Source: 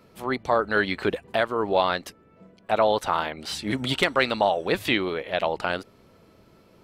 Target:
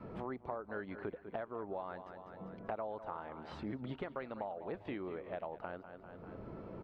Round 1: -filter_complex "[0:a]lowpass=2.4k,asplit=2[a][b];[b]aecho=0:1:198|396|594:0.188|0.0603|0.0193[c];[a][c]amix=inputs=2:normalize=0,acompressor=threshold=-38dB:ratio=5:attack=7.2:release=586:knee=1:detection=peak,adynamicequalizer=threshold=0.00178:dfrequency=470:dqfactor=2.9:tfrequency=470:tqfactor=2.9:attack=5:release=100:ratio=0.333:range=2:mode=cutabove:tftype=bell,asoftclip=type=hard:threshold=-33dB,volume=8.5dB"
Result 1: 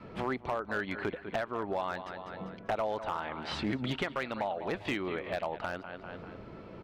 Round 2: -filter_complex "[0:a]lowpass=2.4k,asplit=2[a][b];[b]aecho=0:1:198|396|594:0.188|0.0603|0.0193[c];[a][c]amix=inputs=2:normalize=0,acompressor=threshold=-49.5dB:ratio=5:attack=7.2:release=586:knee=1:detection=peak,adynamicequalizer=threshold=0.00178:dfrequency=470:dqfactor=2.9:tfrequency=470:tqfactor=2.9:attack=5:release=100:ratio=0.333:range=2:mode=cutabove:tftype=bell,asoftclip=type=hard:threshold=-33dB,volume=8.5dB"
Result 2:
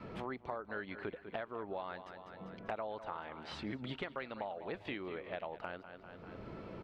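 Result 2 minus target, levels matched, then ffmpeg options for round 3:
2000 Hz band +4.5 dB
-filter_complex "[0:a]lowpass=1.2k,asplit=2[a][b];[b]aecho=0:1:198|396|594:0.188|0.0603|0.0193[c];[a][c]amix=inputs=2:normalize=0,acompressor=threshold=-49.5dB:ratio=5:attack=7.2:release=586:knee=1:detection=peak,adynamicequalizer=threshold=0.00178:dfrequency=470:dqfactor=2.9:tfrequency=470:tqfactor=2.9:attack=5:release=100:ratio=0.333:range=2:mode=cutabove:tftype=bell,asoftclip=type=hard:threshold=-33dB,volume=8.5dB"

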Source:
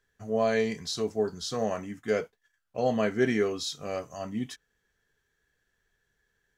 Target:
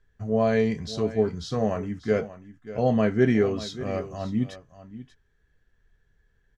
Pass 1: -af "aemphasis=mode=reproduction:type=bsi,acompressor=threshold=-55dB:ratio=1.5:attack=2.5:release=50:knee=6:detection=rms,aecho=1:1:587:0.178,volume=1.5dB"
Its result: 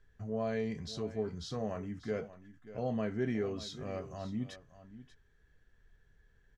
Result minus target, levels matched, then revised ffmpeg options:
compressor: peak gain reduction +14.5 dB
-af "aemphasis=mode=reproduction:type=bsi,aecho=1:1:587:0.178,volume=1.5dB"

